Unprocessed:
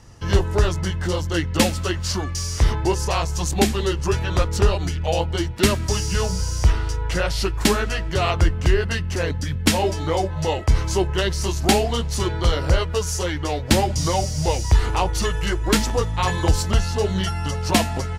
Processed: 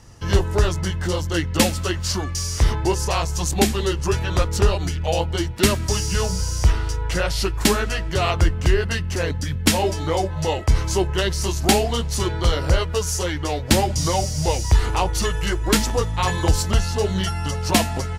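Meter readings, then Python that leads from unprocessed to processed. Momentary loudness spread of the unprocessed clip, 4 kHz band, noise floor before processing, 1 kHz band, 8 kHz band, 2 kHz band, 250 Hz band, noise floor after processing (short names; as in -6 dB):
5 LU, +1.0 dB, -27 dBFS, 0.0 dB, +2.0 dB, +0.5 dB, 0.0 dB, -27 dBFS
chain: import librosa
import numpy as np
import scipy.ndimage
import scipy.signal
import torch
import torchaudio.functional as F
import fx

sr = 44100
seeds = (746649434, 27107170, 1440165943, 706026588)

y = fx.high_shelf(x, sr, hz=7400.0, db=4.5)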